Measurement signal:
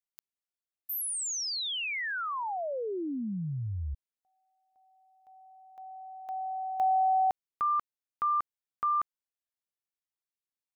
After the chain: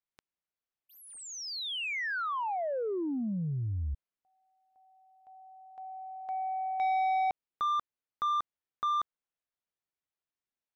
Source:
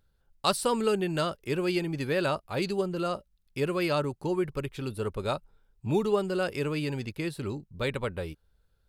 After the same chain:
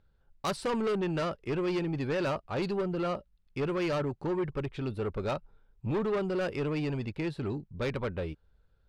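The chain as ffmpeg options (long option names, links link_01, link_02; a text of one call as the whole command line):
ffmpeg -i in.wav -af "adynamicsmooth=sensitivity=2:basefreq=6100,aemphasis=mode=reproduction:type=cd,asoftclip=type=tanh:threshold=-28dB,volume=2dB" out.wav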